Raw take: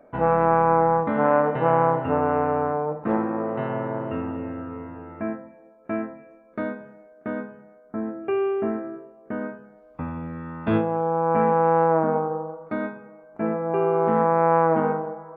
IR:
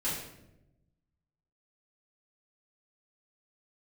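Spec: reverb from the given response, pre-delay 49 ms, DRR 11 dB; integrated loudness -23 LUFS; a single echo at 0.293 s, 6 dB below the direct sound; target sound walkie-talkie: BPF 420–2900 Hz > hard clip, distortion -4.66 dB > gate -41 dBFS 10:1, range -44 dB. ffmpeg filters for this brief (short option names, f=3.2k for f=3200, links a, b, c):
-filter_complex "[0:a]aecho=1:1:293:0.501,asplit=2[a][b];[1:a]atrim=start_sample=2205,adelay=49[c];[b][c]afir=irnorm=-1:irlink=0,volume=-17dB[d];[a][d]amix=inputs=2:normalize=0,highpass=420,lowpass=2.9k,asoftclip=type=hard:threshold=-25.5dB,agate=range=-44dB:threshold=-41dB:ratio=10,volume=7dB"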